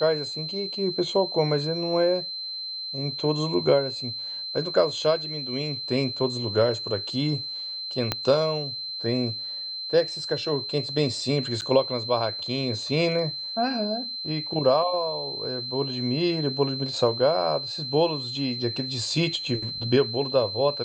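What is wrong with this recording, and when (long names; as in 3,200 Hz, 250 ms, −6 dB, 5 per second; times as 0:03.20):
whistle 4,100 Hz −31 dBFS
0:08.12: click −9 dBFS
0:11.61–0:11.62: drop-out 8.6 ms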